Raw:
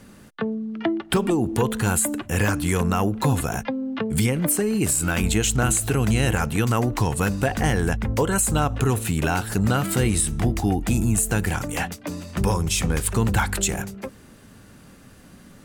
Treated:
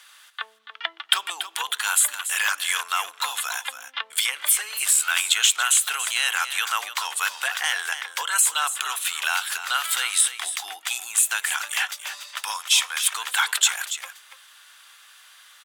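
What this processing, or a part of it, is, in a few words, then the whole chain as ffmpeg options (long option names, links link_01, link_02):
headphones lying on a table: -filter_complex "[0:a]highpass=frequency=1100:width=0.5412,highpass=frequency=1100:width=1.3066,equalizer=frequency=3400:width_type=o:width=0.4:gain=10,asettb=1/sr,asplit=3[link_01][link_02][link_03];[link_01]atrim=end=12.294[link_04];[link_02]atrim=start=12.29:end=13.01,asetpts=PTS-STARTPTS,afade=type=in:duration=0.004:curve=qsin,afade=type=out:start_time=0.716:duration=0.004:curve=qsin,highpass=frequency=530:width=0.5412,highpass=frequency=530:width=1.3066[link_05];[link_03]atrim=start=13.006[link_06];[link_04][link_05]acrossfade=duration=0.004:curve1=hsin:curve2=qsin[link_07];[link_07][link_06]acrossfade=duration=0.004:curve1=qsin:curve2=hsin,aecho=1:1:285:0.282,volume=3.5dB"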